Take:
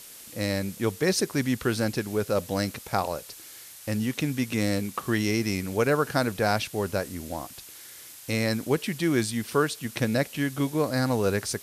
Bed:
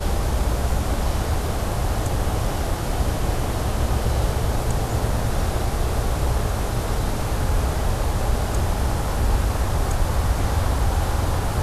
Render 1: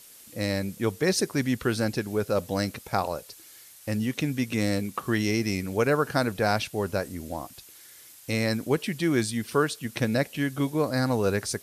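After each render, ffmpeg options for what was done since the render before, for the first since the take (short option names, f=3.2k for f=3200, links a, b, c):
-af "afftdn=nr=6:nf=-46"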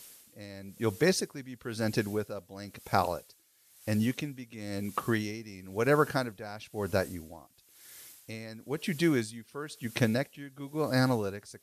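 -af "aeval=exprs='val(0)*pow(10,-18*(0.5-0.5*cos(2*PI*1*n/s))/20)':c=same"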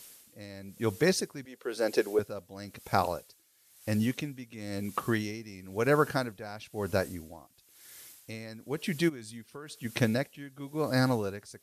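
-filter_complex "[0:a]asettb=1/sr,asplit=3[a][b][c];[a]atrim=end=1.454[d];[b]atrim=start=1.45:end=2.19,asetpts=PTS-STARTPTS,afade=t=in:d=0.004:c=qsin,afade=t=out:st=0.736:d=0.004:c=qsin,highpass=f=430:t=q:w=2.5[e];[c]atrim=start=2.186[f];[d][e]acrossfade=d=0.004:c1=hsin:c2=qsin[g];[g][f]acrossfade=d=0.004:c1=qsin:c2=hsin,asplit=3[h][i][j];[h]afade=t=out:st=9.08:d=0.02[k];[i]acompressor=threshold=-38dB:ratio=16:attack=3.2:release=140:knee=1:detection=peak,afade=t=in:st=9.08:d=0.02,afade=t=out:st=9.83:d=0.02[l];[j]afade=t=in:st=9.83:d=0.02[m];[k][l][m]amix=inputs=3:normalize=0"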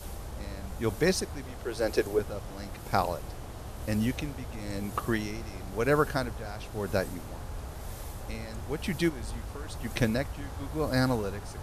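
-filter_complex "[1:a]volume=-18dB[a];[0:a][a]amix=inputs=2:normalize=0"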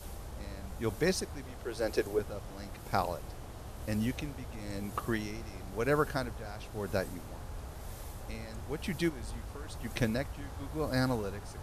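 -af "volume=-4dB"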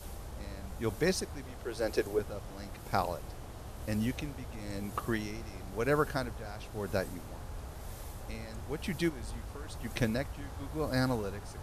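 -af anull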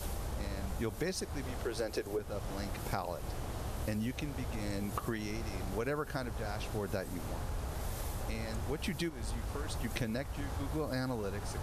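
-filter_complex "[0:a]asplit=2[a][b];[b]alimiter=limit=-23dB:level=0:latency=1:release=73,volume=1dB[c];[a][c]amix=inputs=2:normalize=0,acompressor=threshold=-33dB:ratio=6"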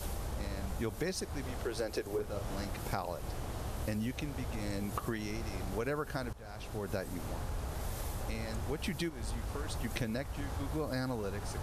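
-filter_complex "[0:a]asettb=1/sr,asplit=3[a][b][c];[a]atrim=end=2.104[d];[b]atrim=start=2.1:end=2.65,asetpts=PTS-STARTPTS,afade=t=in:d=0.004:c=qsin,afade=t=out:st=0.546:d=0.004:c=qsin,asplit=2[e][f];[f]adelay=36,volume=-6dB[g];[e][g]amix=inputs=2:normalize=0,atrim=end_sample=24255[h];[c]atrim=start=2.646[i];[d][h]acrossfade=d=0.004:c1=hsin:c2=qsin[j];[j][i]acrossfade=d=0.004:c1=qsin:c2=hsin,asplit=2[k][l];[k]atrim=end=6.33,asetpts=PTS-STARTPTS,afade=t=out:st=6.326:d=0.004:c=hsin:silence=0.16788[m];[l]atrim=start=6.33,asetpts=PTS-STARTPTS,afade=t=in:d=0.62:silence=0.16788[n];[m][n]concat=n=2:v=0:a=1"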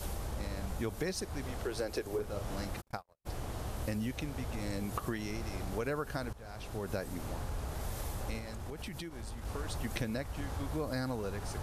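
-filter_complex "[0:a]asplit=3[a][b][c];[a]afade=t=out:st=2.8:d=0.02[d];[b]agate=range=-56dB:threshold=-34dB:ratio=16:release=100:detection=peak,afade=t=in:st=2.8:d=0.02,afade=t=out:st=3.25:d=0.02[e];[c]afade=t=in:st=3.25:d=0.02[f];[d][e][f]amix=inputs=3:normalize=0,asettb=1/sr,asplit=3[g][h][i];[g]atrim=end=8.384[j];[h]atrim=start=8.38:end=9.45,asetpts=PTS-STARTPTS,afade=t=in:d=0.004:c=qsin,afade=t=out:st=1.066:d=0.004:c=qsin,acompressor=threshold=-38dB:ratio=6:attack=3.2:release=140:knee=1:detection=peak[k];[i]atrim=start=9.446[l];[j][k]acrossfade=d=0.004:c1=hsin:c2=qsin[m];[m][l]acrossfade=d=0.004:c1=qsin:c2=hsin"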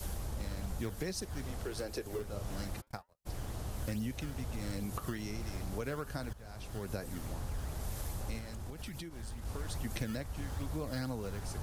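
-filter_complex "[0:a]acrossover=split=270|4200[a][b][c];[a]acrusher=samples=16:mix=1:aa=0.000001:lfo=1:lforange=25.6:lforate=2.4[d];[b]flanger=delay=2.8:depth=7:regen=-78:speed=0.91:shape=triangular[e];[d][e][c]amix=inputs=3:normalize=0"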